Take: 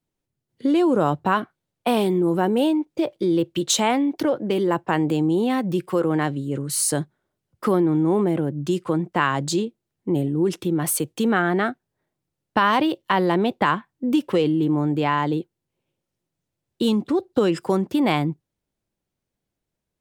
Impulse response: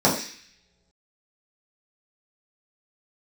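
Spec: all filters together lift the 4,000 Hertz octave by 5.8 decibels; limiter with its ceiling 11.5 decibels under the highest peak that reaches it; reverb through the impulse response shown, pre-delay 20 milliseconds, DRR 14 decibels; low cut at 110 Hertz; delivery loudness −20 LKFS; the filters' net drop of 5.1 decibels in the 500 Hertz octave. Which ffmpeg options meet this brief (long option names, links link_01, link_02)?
-filter_complex "[0:a]highpass=110,equalizer=frequency=500:width_type=o:gain=-7.5,equalizer=frequency=4000:width_type=o:gain=7.5,alimiter=limit=-14dB:level=0:latency=1,asplit=2[link_01][link_02];[1:a]atrim=start_sample=2205,adelay=20[link_03];[link_02][link_03]afir=irnorm=-1:irlink=0,volume=-33dB[link_04];[link_01][link_04]amix=inputs=2:normalize=0,volume=5dB"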